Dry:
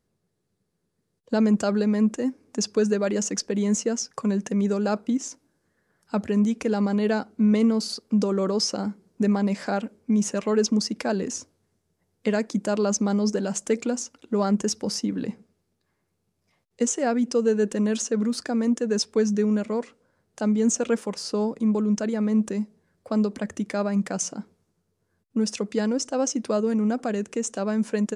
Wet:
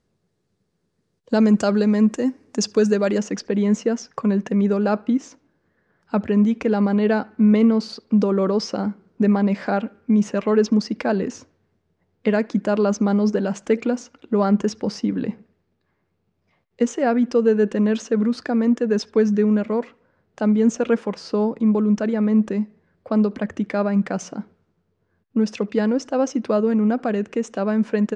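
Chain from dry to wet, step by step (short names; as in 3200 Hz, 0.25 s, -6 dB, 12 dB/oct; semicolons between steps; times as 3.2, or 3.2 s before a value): LPF 7000 Hz 12 dB/oct, from 3.18 s 3100 Hz; narrowing echo 72 ms, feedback 54%, band-pass 1700 Hz, level -24 dB; gain +4.5 dB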